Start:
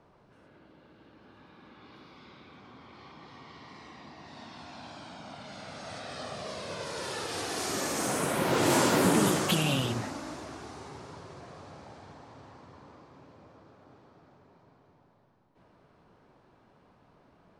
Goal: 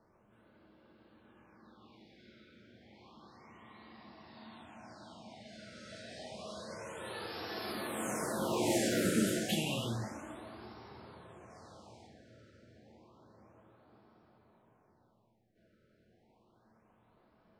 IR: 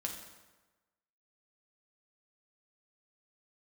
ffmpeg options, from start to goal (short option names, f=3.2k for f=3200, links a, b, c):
-filter_complex "[0:a]asettb=1/sr,asplit=3[a][b][c];[a]atrim=end=11.504[d];[b]atrim=start=11.5:end=12.07,asetpts=PTS-STARTPTS,afade=t=in:d=0.004:c=qsin,afade=t=out:st=0.566:d=0.004:c=qsin,highshelf=f=3.7k:g=7[e];[c]atrim=start=12.066[f];[d][e]acrossfade=d=0.004:c1=hsin:c2=qsin[g];[g][f]acrossfade=d=0.004:c1=qsin:c2=hsin[h];[1:a]atrim=start_sample=2205,atrim=end_sample=3528,asetrate=48510,aresample=44100[i];[h][i]afir=irnorm=-1:irlink=0,afftfilt=real='re*(1-between(b*sr/1024,900*pow(8000/900,0.5+0.5*sin(2*PI*0.3*pts/sr))/1.41,900*pow(8000/900,0.5+0.5*sin(2*PI*0.3*pts/sr))*1.41))':imag='im*(1-between(b*sr/1024,900*pow(8000/900,0.5+0.5*sin(2*PI*0.3*pts/sr))/1.41,900*pow(8000/900,0.5+0.5*sin(2*PI*0.3*pts/sr))*1.41))':win_size=1024:overlap=0.75,volume=-5.5dB"